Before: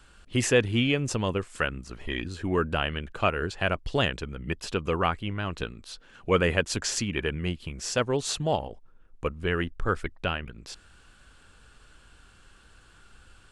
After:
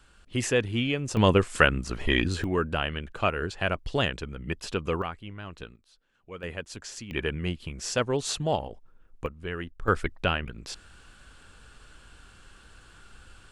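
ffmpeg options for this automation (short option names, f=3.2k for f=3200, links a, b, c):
-af "asetnsamples=n=441:p=0,asendcmd='1.17 volume volume 8dB;2.44 volume volume -1dB;5.02 volume volume -9dB;5.76 volume volume -19dB;6.43 volume volume -11.5dB;7.11 volume volume -0.5dB;9.26 volume volume -7dB;9.88 volume volume 3dB',volume=-3dB"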